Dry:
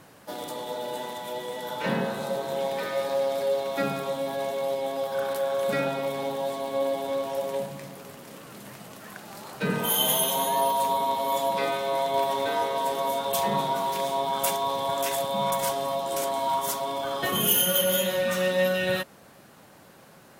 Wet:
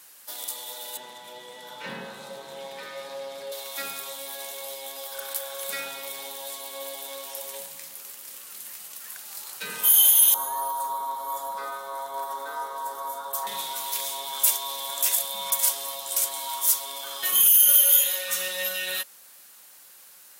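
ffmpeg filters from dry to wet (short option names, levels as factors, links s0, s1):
-filter_complex "[0:a]asettb=1/sr,asplit=3[s0][s1][s2];[s0]atrim=end=0.974[s3];[s1]atrim=start=0.97:end=3.52,asetpts=PTS-STARTPTS,afade=t=in:d=0.004:c=qsin,afade=t=out:st=2.546:d=0.004:c=qsin,aemphasis=mode=reproduction:type=riaa[s4];[s2]atrim=start=3.516[s5];[s3][s4]acrossfade=d=0.004:c1=hsin:c2=qsin[s6];[s6][s5]acrossfade=d=0.004:c1=qsin:c2=hsin,asettb=1/sr,asplit=3[s7][s8][s9];[s7]atrim=end=10.344[s10];[s8]atrim=start=10.34:end=13.47,asetpts=PTS-STARTPTS,afade=t=in:d=0.004:c=qsin,afade=t=out:st=3.126:d=0.004:c=qsin,highshelf=f=1800:t=q:w=3:g=-11.5[s11];[s9]atrim=start=13.466[s12];[s10][s11]acrossfade=d=0.004:c1=hsin:c2=qsin[s13];[s13][s12]acrossfade=d=0.004:c1=qsin:c2=hsin,asettb=1/sr,asplit=3[s14][s15][s16];[s14]atrim=end=17.734[s17];[s15]atrim=start=17.73:end=18.29,asetpts=PTS-STARTPTS,afade=t=in:d=0.004:c=qsin,afade=t=out:st=0.556:d=0.004:c=qsin,highpass=340[s18];[s16]atrim=start=18.286[s19];[s17][s18]acrossfade=d=0.004:c1=hsin:c2=qsin[s20];[s20][s19]acrossfade=d=0.004:c1=qsin:c2=hsin,aderivative,bandreject=f=660:w=12,alimiter=level_in=5.31:limit=0.891:release=50:level=0:latency=1,volume=0.531"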